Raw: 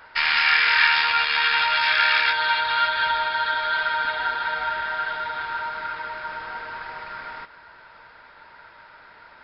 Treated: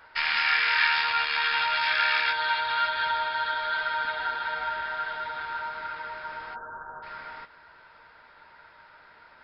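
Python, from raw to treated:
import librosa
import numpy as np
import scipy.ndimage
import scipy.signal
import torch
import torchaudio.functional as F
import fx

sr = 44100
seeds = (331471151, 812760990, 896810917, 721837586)

y = fx.steep_lowpass(x, sr, hz=1600.0, slope=96, at=(6.54, 7.02), fade=0.02)
y = fx.doubler(y, sr, ms=13.0, db=-12)
y = y * librosa.db_to_amplitude(-5.5)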